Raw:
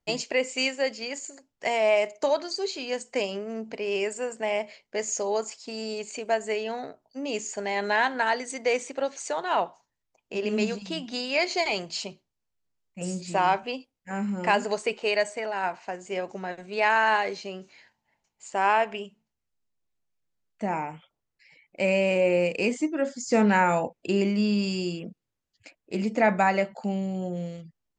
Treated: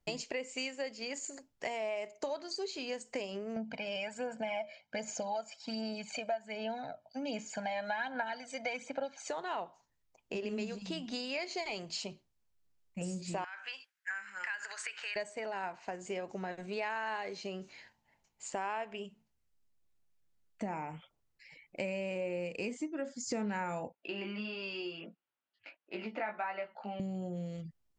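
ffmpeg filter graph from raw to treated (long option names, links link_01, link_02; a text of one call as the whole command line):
ffmpeg -i in.wav -filter_complex "[0:a]asettb=1/sr,asplit=3[link_01][link_02][link_03];[link_01]atrim=end=3.564[link_04];[link_02]atrim=start=3.56:end=9.28,asetpts=PTS-STARTPTS,afade=type=in:duration=0.004:curve=qsin,afade=type=out:start_time=5.716:duration=0.004:curve=qsin,aecho=1:1:1.3:0.92,atrim=end_sample=252252,aphaser=in_gain=1:out_gain=1:delay=1.7:decay=0.49:speed=1.3:type=sinusoidal,highpass=140,lowpass=4500[link_05];[link_03]atrim=start=9.276[link_06];[link_04][link_05]acrossfade=duration=0.004:curve1=hsin:curve2=qsin[link_07];[link_07][link_06]acrossfade=duration=0.004:curve1=qsin:curve2=hsin,asettb=1/sr,asplit=3[link_08][link_09][link_10];[link_08]atrim=end=13.444[link_11];[link_09]atrim=start=13.44:end=15.16,asetpts=PTS-STARTPTS,afade=type=in:duration=0.004:curve=qsin,afade=type=out:start_time=1.716:duration=0.004:curve=qsin,acompressor=threshold=-30dB:ratio=16:attack=3.2:release=140:knee=1:detection=peak,highpass=frequency=1600:width_type=q:width=5.4[link_12];[link_10]atrim=start=15.156[link_13];[link_11][link_12]acrossfade=duration=0.004:curve1=hsin:curve2=qsin[link_14];[link_14][link_13]acrossfade=duration=0.004:curve1=qsin:curve2=hsin,asettb=1/sr,asplit=3[link_15][link_16][link_17];[link_15]atrim=end=23.924[link_18];[link_16]atrim=start=23.92:end=27,asetpts=PTS-STARTPTS,afade=type=in:duration=0.004:curve=qsin,afade=type=out:start_time=3.076:duration=0.004:curve=qsin,flanger=delay=17:depth=2.3:speed=1.5,highpass=430,equalizer=frequency=460:width_type=q:width=4:gain=-6,equalizer=frequency=890:width_type=q:width=4:gain=3,equalizer=frequency=1400:width_type=q:width=4:gain=6,equalizer=frequency=2800:width_type=q:width=4:gain=3,lowpass=frequency=3700:width=0.5412,lowpass=frequency=3700:width=1.3066[link_19];[link_17]atrim=start=26.996[link_20];[link_18][link_19]acrossfade=duration=0.004:curve1=hsin:curve2=qsin[link_21];[link_21][link_20]acrossfade=duration=0.004:curve1=qsin:curve2=hsin,lowshelf=frequency=140:gain=6,acompressor=threshold=-37dB:ratio=4" out.wav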